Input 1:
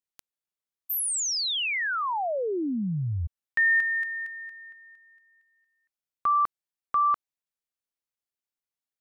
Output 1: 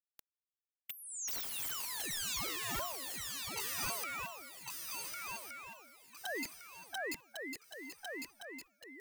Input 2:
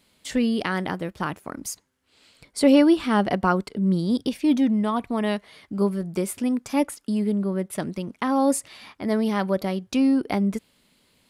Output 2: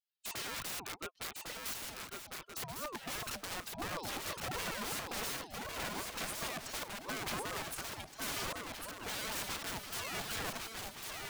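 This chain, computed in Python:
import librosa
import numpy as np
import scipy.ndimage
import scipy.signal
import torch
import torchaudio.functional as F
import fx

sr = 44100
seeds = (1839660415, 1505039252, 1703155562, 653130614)

p1 = fx.bin_expand(x, sr, power=2.0)
p2 = scipy.signal.sosfilt(scipy.signal.butter(4, 250.0, 'highpass', fs=sr, output='sos'), p1)
p3 = fx.env_lowpass_down(p2, sr, base_hz=1200.0, full_db=-23.0)
p4 = fx.low_shelf(p3, sr, hz=320.0, db=-9.0)
p5 = fx.over_compress(p4, sr, threshold_db=-31.0, ratio=-0.5)
p6 = (np.mod(10.0 ** (36.5 / 20.0) * p5 + 1.0, 2.0) - 1.0) / 10.0 ** (36.5 / 20.0)
p7 = p6 + fx.echo_swing(p6, sr, ms=1470, ratio=3, feedback_pct=34, wet_db=-4.0, dry=0)
p8 = fx.ring_lfo(p7, sr, carrier_hz=650.0, swing_pct=40, hz=2.8)
y = p8 * librosa.db_to_amplitude(4.0)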